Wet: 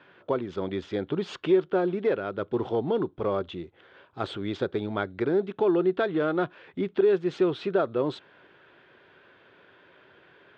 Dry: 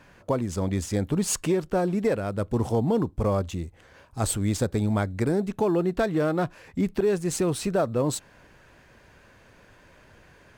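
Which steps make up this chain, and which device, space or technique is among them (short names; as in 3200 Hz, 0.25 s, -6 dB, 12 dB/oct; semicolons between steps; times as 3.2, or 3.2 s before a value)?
kitchen radio (speaker cabinet 180–3600 Hz, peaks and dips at 220 Hz -5 dB, 380 Hz +8 dB, 1400 Hz +6 dB, 3400 Hz +9 dB); gain -3 dB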